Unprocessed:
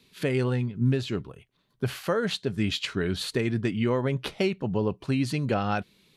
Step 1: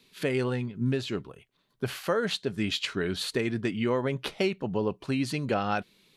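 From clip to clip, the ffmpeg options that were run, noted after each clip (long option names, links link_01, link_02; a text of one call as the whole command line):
ffmpeg -i in.wav -af "equalizer=frequency=84:width_type=o:width=2.3:gain=-7" out.wav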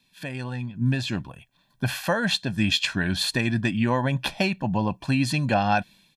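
ffmpeg -i in.wav -af "dynaudnorm=framelen=540:gausssize=3:maxgain=11.5dB,aecho=1:1:1.2:0.82,volume=-6dB" out.wav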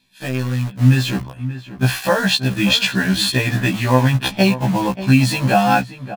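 ffmpeg -i in.wav -filter_complex "[0:a]asplit=2[link_01][link_02];[link_02]acrusher=bits=4:mix=0:aa=0.000001,volume=-4.5dB[link_03];[link_01][link_03]amix=inputs=2:normalize=0,asplit=2[link_04][link_05];[link_05]adelay=583.1,volume=-13dB,highshelf=frequency=4000:gain=-13.1[link_06];[link_04][link_06]amix=inputs=2:normalize=0,afftfilt=real='re*1.73*eq(mod(b,3),0)':imag='im*1.73*eq(mod(b,3),0)':win_size=2048:overlap=0.75,volume=5.5dB" out.wav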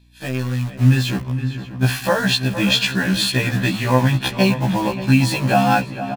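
ffmpeg -i in.wav -filter_complex "[0:a]aeval=exprs='val(0)+0.00316*(sin(2*PI*60*n/s)+sin(2*PI*2*60*n/s)/2+sin(2*PI*3*60*n/s)/3+sin(2*PI*4*60*n/s)/4+sin(2*PI*5*60*n/s)/5)':channel_layout=same,asplit=2[link_01][link_02];[link_02]adelay=463,lowpass=frequency=3600:poles=1,volume=-11.5dB,asplit=2[link_03][link_04];[link_04]adelay=463,lowpass=frequency=3600:poles=1,volume=0.48,asplit=2[link_05][link_06];[link_06]adelay=463,lowpass=frequency=3600:poles=1,volume=0.48,asplit=2[link_07][link_08];[link_08]adelay=463,lowpass=frequency=3600:poles=1,volume=0.48,asplit=2[link_09][link_10];[link_10]adelay=463,lowpass=frequency=3600:poles=1,volume=0.48[link_11];[link_01][link_03][link_05][link_07][link_09][link_11]amix=inputs=6:normalize=0,volume=-1.5dB" out.wav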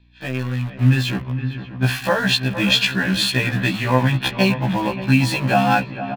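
ffmpeg -i in.wav -filter_complex "[0:a]acrossover=split=430|3200[link_01][link_02][link_03];[link_02]crystalizer=i=3.5:c=0[link_04];[link_03]aeval=exprs='sgn(val(0))*max(abs(val(0))-0.01,0)':channel_layout=same[link_05];[link_01][link_04][link_05]amix=inputs=3:normalize=0,volume=-1.5dB" out.wav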